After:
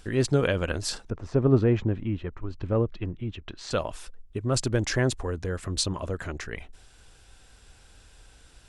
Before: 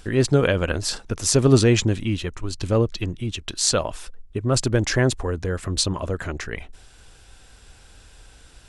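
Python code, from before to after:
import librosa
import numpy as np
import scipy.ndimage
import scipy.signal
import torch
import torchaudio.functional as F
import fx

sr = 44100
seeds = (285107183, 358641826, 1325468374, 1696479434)

y = fx.lowpass(x, sr, hz=fx.line((1.09, 1200.0), (3.7, 2300.0)), slope=12, at=(1.09, 3.7), fade=0.02)
y = y * 10.0 ** (-5.0 / 20.0)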